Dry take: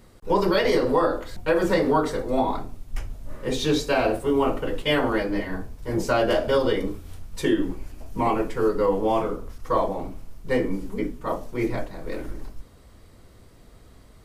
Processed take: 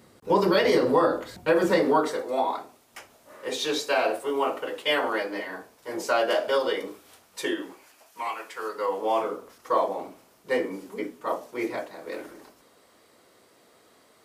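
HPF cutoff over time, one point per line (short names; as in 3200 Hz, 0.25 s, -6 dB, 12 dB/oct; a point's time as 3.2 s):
1.52 s 140 Hz
2.36 s 500 Hz
7.5 s 500 Hz
8.33 s 1400 Hz
9.3 s 390 Hz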